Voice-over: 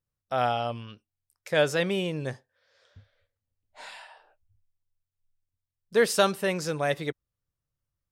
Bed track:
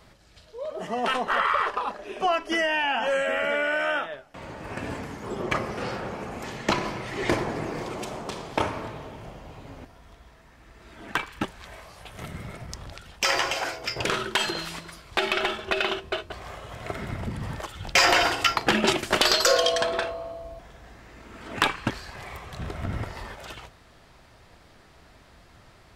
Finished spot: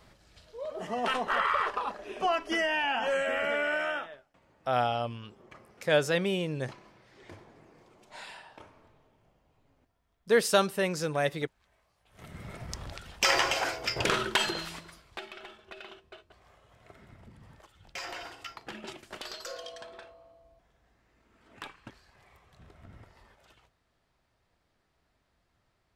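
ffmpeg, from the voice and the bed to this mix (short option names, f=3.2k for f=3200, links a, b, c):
-filter_complex "[0:a]adelay=4350,volume=-1.5dB[a];[1:a]volume=21dB,afade=t=out:st=3.74:d=0.66:silence=0.0794328,afade=t=in:st=12.06:d=0.68:silence=0.0562341,afade=t=out:st=14.26:d=1.01:silence=0.1[b];[a][b]amix=inputs=2:normalize=0"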